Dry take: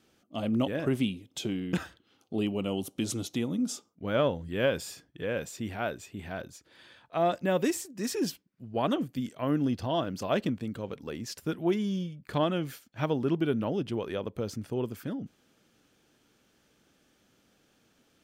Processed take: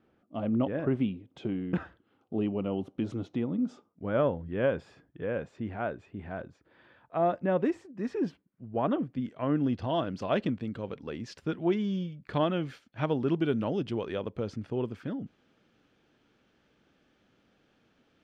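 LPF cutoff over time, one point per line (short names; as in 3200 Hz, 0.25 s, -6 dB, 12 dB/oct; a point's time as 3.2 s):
8.86 s 1600 Hz
10.02 s 3600 Hz
13.09 s 3600 Hz
13.6 s 6900 Hz
14.48 s 3300 Hz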